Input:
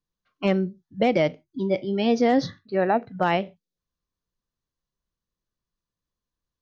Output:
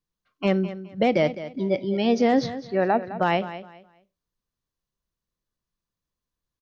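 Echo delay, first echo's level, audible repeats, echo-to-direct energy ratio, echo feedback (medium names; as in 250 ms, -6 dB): 209 ms, -13.5 dB, 2, -13.0 dB, 25%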